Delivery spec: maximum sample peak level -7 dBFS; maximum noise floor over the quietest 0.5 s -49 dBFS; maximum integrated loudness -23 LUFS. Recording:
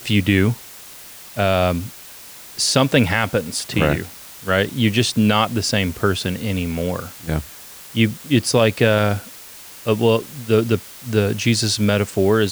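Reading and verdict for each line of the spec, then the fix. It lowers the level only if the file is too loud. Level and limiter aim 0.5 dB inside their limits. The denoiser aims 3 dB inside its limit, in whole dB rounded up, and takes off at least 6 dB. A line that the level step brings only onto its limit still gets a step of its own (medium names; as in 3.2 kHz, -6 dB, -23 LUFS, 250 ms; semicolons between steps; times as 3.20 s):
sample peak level -3.0 dBFS: fail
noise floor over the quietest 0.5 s -39 dBFS: fail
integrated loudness -19.0 LUFS: fail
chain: noise reduction 9 dB, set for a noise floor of -39 dBFS; trim -4.5 dB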